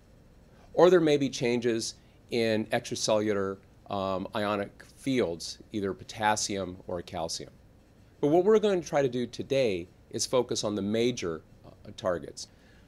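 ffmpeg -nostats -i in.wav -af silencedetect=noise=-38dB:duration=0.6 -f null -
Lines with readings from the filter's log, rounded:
silence_start: 0.00
silence_end: 0.75 | silence_duration: 0.75
silence_start: 7.48
silence_end: 8.23 | silence_duration: 0.75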